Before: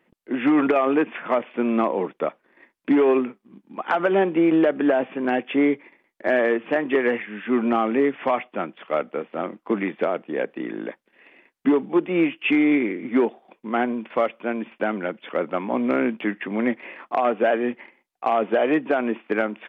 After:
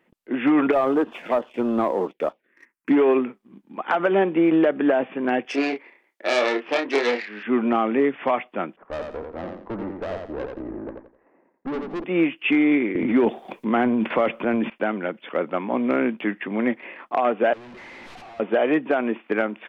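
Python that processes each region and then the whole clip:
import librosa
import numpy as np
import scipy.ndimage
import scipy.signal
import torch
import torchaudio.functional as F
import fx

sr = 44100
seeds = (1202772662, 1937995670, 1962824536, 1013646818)

y = fx.chain(x, sr, fx.low_shelf(hz=210.0, db=-10.0),
    fx.env_phaser(low_hz=590.0, high_hz=2300.0, full_db=-21.5),
    fx.leveller(passes=1), at=(0.72, 2.9))
y = fx.chain(y, sr, fx.self_delay(depth_ms=0.22),
    fx.highpass(hz=350.0, slope=12),
    fx.doubler(ms=29.0, db=-5.0), at=(5.45, 7.43))
y = fx.chain(y, sr, fx.lowpass(hz=1200.0, slope=24),
    fx.tube_stage(drive_db=26.0, bias=0.6),
    fx.echo_feedback(ms=86, feedback_pct=30, wet_db=-4.5), at=(8.76, 12.04))
y = fx.chain(y, sr, fx.low_shelf(hz=250.0, db=6.0),
    fx.transient(attack_db=-2, sustain_db=10),
    fx.band_squash(depth_pct=70), at=(12.95, 14.7))
y = fx.chain(y, sr, fx.clip_1bit(),
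    fx.lowpass(hz=2900.0, slope=12),
    fx.level_steps(step_db=21), at=(17.53, 18.4))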